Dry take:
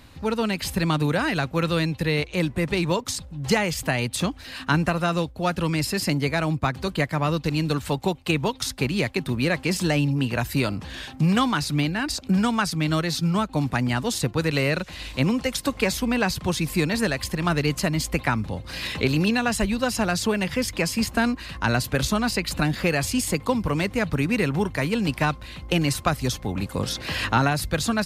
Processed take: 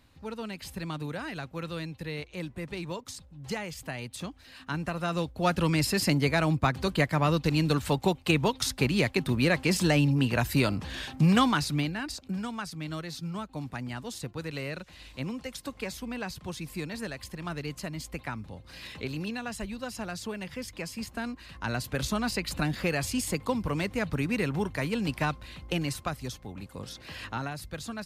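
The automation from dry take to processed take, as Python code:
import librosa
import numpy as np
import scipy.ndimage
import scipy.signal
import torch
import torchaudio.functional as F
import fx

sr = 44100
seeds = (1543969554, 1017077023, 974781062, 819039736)

y = fx.gain(x, sr, db=fx.line((4.67, -13.0), (5.47, -1.5), (11.48, -1.5), (12.38, -13.0), (21.22, -13.0), (22.2, -6.0), (25.52, -6.0), (26.55, -14.0)))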